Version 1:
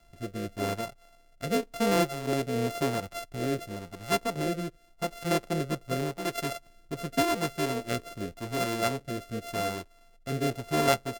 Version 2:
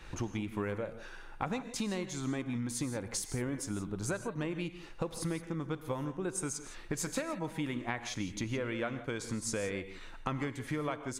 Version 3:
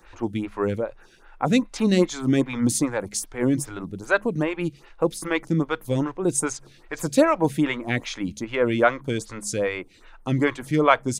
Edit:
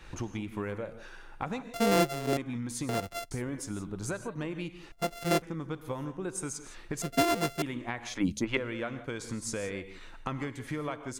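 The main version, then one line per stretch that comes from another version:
2
0:01.74–0:02.37: punch in from 1
0:02.89–0:03.31: punch in from 1
0:04.92–0:05.42: punch in from 1
0:07.02–0:07.62: punch in from 1
0:08.16–0:08.57: punch in from 3

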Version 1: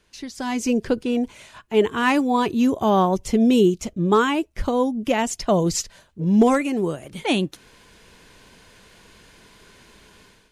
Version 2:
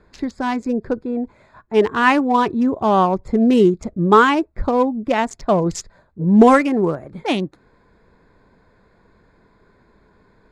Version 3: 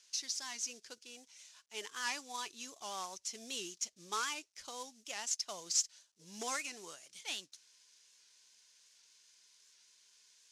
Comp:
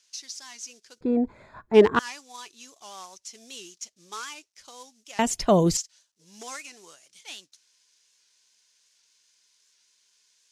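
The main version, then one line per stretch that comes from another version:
3
0:01.01–0:01.99: punch in from 2
0:05.19–0:05.77: punch in from 1

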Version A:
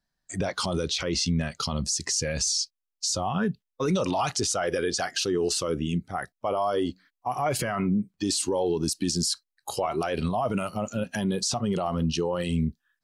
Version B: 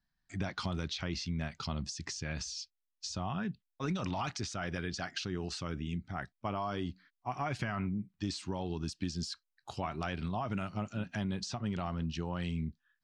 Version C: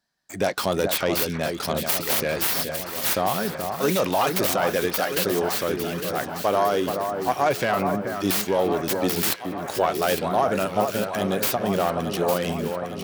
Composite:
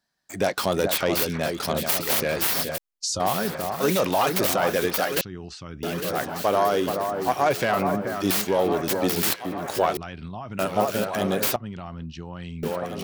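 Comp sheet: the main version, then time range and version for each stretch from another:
C
0:02.78–0:03.20: punch in from A
0:05.21–0:05.83: punch in from B
0:09.97–0:10.59: punch in from B
0:11.56–0:12.63: punch in from B

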